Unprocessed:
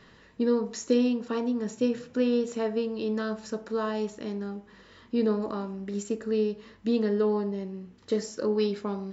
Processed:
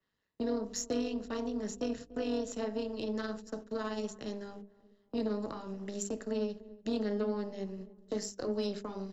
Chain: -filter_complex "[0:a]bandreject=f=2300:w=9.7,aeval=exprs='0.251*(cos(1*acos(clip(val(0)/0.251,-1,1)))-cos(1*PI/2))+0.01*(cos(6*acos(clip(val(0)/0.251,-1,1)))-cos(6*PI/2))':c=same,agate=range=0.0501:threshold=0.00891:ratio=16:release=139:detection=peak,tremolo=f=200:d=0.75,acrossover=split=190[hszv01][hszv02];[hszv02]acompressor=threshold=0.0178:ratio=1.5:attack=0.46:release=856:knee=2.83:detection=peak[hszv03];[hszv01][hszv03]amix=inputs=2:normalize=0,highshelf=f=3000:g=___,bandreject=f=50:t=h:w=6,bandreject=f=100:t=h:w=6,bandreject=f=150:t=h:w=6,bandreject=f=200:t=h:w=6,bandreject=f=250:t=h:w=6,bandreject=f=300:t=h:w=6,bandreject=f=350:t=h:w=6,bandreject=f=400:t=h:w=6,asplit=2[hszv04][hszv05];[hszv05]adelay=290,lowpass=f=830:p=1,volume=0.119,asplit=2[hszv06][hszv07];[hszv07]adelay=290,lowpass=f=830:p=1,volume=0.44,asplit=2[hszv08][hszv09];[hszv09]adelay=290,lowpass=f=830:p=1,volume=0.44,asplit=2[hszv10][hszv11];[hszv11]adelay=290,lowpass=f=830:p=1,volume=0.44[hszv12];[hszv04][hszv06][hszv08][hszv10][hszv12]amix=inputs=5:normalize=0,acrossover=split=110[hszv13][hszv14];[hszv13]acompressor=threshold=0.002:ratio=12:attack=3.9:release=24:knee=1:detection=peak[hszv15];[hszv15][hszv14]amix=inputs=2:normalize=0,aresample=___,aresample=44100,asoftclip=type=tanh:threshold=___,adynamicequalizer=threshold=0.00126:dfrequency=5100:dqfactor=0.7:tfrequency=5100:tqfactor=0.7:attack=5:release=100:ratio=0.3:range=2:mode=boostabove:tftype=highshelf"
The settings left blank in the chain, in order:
6, 32000, 0.0891